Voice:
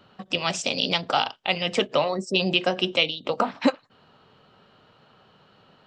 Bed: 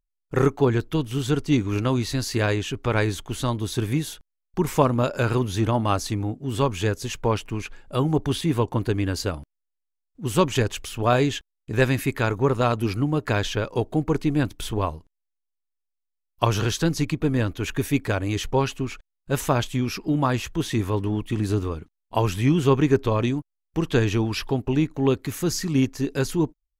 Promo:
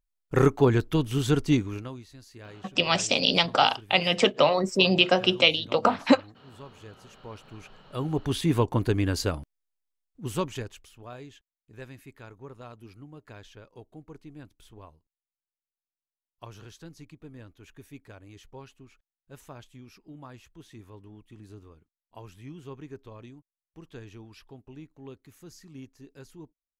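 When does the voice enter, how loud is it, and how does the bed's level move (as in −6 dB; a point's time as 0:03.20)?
2.45 s, +2.0 dB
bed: 0:01.50 −0.5 dB
0:02.08 −23.5 dB
0:07.09 −23.5 dB
0:08.47 −1 dB
0:10.00 −1 dB
0:11.09 −23.5 dB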